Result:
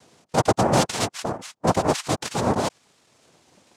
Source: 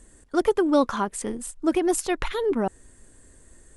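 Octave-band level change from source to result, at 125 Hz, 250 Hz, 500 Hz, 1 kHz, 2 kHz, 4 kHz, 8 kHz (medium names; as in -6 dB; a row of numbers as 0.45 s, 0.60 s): +15.5 dB, -2.0 dB, -0.5 dB, +5.5 dB, +3.0 dB, +8.5 dB, +3.0 dB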